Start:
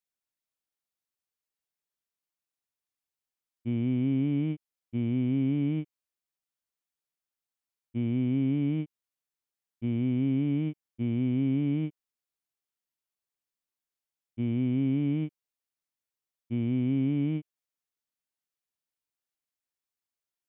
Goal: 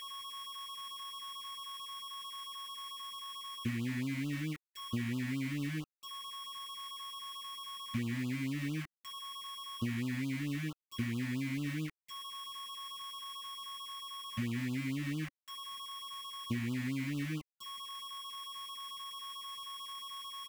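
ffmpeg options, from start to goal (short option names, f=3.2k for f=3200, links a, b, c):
-af "aeval=exprs='val(0)+0.00224*sin(2*PI*1100*n/s)':c=same,acompressor=threshold=-41dB:ratio=12,acrusher=bits=8:mix=0:aa=0.000001,firequalizer=gain_entry='entry(230,0);entry(690,-6);entry(1900,11);entry(3900,-1)':delay=0.05:min_phase=1,afftfilt=real='re*(1-between(b*sr/1024,350*pow(2000/350,0.5+0.5*sin(2*PI*4.5*pts/sr))/1.41,350*pow(2000/350,0.5+0.5*sin(2*PI*4.5*pts/sr))*1.41))':imag='im*(1-between(b*sr/1024,350*pow(2000/350,0.5+0.5*sin(2*PI*4.5*pts/sr))/1.41,350*pow(2000/350,0.5+0.5*sin(2*PI*4.5*pts/sr))*1.41))':win_size=1024:overlap=0.75,volume=8dB"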